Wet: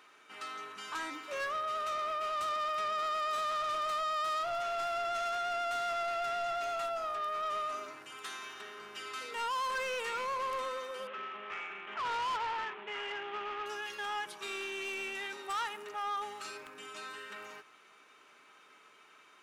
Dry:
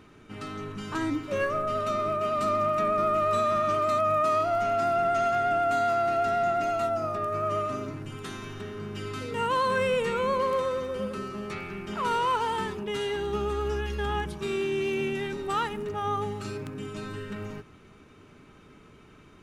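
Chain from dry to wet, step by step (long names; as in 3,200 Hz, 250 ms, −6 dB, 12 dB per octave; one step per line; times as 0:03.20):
0:11.07–0:13.66: variable-slope delta modulation 16 kbit/s
high-pass filter 870 Hz 12 dB per octave
soft clipping −31.5 dBFS, distortion −10 dB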